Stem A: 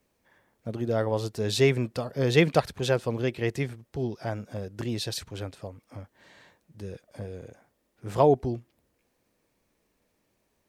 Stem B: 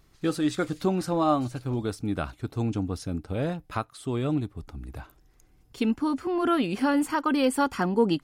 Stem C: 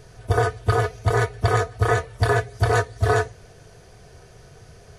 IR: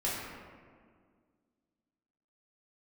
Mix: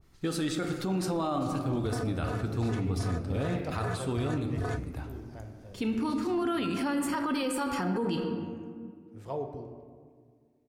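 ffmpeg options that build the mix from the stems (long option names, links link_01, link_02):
-filter_complex "[0:a]adelay=1100,volume=-19dB,asplit=2[link_01][link_02];[link_02]volume=-8.5dB[link_03];[1:a]adynamicequalizer=threshold=0.00891:dfrequency=1700:dqfactor=0.7:tfrequency=1700:tqfactor=0.7:attack=5:release=100:ratio=0.375:range=2:mode=boostabove:tftype=highshelf,volume=-4.5dB,asplit=3[link_04][link_05][link_06];[link_05]volume=-9.5dB[link_07];[2:a]adelay=1550,volume=-16dB[link_08];[link_06]apad=whole_len=519733[link_09];[link_01][link_09]sidechaincompress=threshold=-34dB:ratio=8:attack=16:release=390[link_10];[3:a]atrim=start_sample=2205[link_11];[link_03][link_07]amix=inputs=2:normalize=0[link_12];[link_12][link_11]afir=irnorm=-1:irlink=0[link_13];[link_10][link_04][link_08][link_13]amix=inputs=4:normalize=0,equalizer=frequency=100:width_type=o:width=1.4:gain=4.5,alimiter=limit=-22.5dB:level=0:latency=1:release=32"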